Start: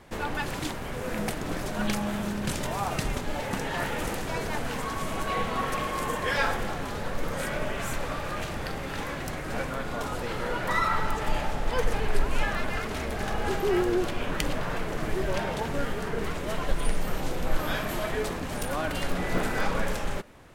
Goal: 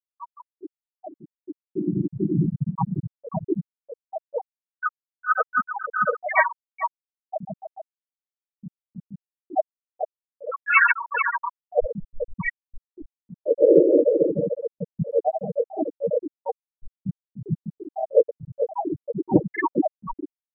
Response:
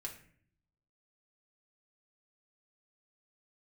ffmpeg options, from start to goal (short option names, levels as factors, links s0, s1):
-filter_complex "[0:a]highpass=60,asetrate=49501,aresample=44100,atempo=0.890899,asplit=2[s0][s1];[1:a]atrim=start_sample=2205,lowpass=2500[s2];[s1][s2]afir=irnorm=-1:irlink=0,volume=0.178[s3];[s0][s3]amix=inputs=2:normalize=0,afftfilt=real='hypot(re,im)*cos(2*PI*random(0))':imag='hypot(re,im)*sin(2*PI*random(1))':win_size=512:overlap=0.75,acrossover=split=8600[s4][s5];[s5]acompressor=threshold=0.00112:ratio=4:attack=1:release=60[s6];[s4][s6]amix=inputs=2:normalize=0,aecho=1:1:6.3:0.87,aecho=1:1:441|882|1323|1764|2205|2646:0.631|0.29|0.134|0.0614|0.0283|0.013,afftfilt=real='re*gte(hypot(re,im),0.2)':imag='im*gte(hypot(re,im),0.2)':win_size=1024:overlap=0.75,asplit=2[s7][s8];[s8]asetrate=52444,aresample=44100,atempo=0.840896,volume=0.631[s9];[s7][s9]amix=inputs=2:normalize=0,dynaudnorm=f=210:g=17:m=6.68"